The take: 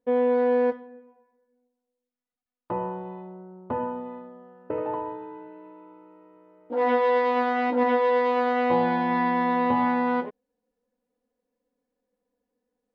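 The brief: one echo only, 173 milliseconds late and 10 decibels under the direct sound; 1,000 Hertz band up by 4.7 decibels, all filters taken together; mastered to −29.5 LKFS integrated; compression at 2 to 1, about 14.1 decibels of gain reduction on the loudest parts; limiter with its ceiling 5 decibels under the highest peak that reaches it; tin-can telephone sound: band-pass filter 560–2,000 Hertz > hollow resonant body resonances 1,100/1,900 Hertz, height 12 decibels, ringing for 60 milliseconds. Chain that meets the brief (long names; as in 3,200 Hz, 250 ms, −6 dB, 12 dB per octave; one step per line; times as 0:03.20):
parametric band 1,000 Hz +6.5 dB
downward compressor 2 to 1, threshold −42 dBFS
brickwall limiter −27 dBFS
band-pass filter 560–2,000 Hz
single-tap delay 173 ms −10 dB
hollow resonant body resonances 1,100/1,900 Hz, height 12 dB, ringing for 60 ms
level +7.5 dB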